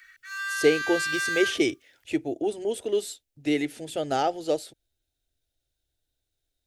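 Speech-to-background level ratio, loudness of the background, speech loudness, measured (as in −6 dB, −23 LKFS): 1.5 dB, −29.0 LKFS, −27.5 LKFS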